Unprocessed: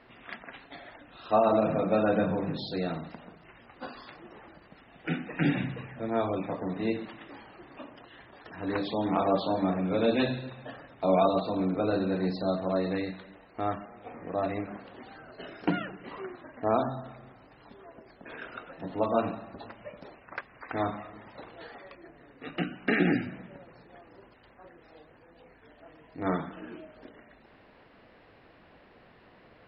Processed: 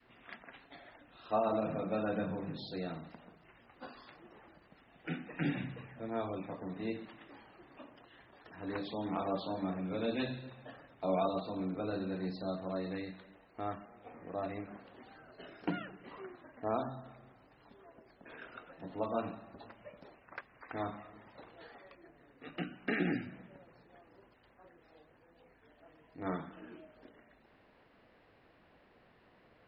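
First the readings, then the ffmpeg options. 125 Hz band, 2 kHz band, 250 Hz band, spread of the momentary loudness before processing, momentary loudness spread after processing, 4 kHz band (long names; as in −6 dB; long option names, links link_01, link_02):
−8.0 dB, −8.0 dB, −8.5 dB, 21 LU, 20 LU, −8.0 dB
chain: -af "adynamicequalizer=threshold=0.0141:dfrequency=620:dqfactor=0.8:tfrequency=620:tqfactor=0.8:attack=5:release=100:ratio=0.375:range=1.5:mode=cutabove:tftype=bell,volume=-8dB"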